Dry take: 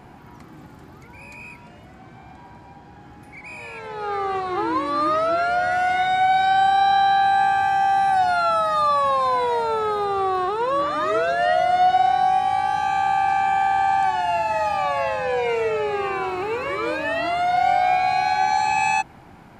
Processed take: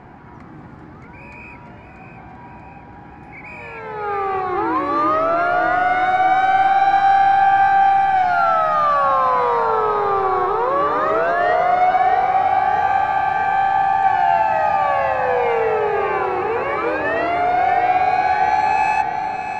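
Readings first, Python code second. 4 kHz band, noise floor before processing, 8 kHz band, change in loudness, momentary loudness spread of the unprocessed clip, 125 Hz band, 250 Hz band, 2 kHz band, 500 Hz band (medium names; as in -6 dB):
-4.5 dB, -45 dBFS, no reading, +3.5 dB, 8 LU, +3.5 dB, +4.0 dB, +3.5 dB, +3.5 dB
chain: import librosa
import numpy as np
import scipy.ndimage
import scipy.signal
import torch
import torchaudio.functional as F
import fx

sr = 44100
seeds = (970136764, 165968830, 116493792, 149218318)

y = scipy.signal.sosfilt(scipy.signal.butter(2, 5500.0, 'lowpass', fs=sr, output='sos'), x)
y = fx.quant_float(y, sr, bits=6)
y = 10.0 ** (-15.5 / 20.0) * np.tanh(y / 10.0 ** (-15.5 / 20.0))
y = fx.high_shelf_res(y, sr, hz=2500.0, db=-6.0, q=1.5)
y = fx.echo_alternate(y, sr, ms=318, hz=1100.0, feedback_pct=79, wet_db=-6)
y = y * 10.0 ** (3.5 / 20.0)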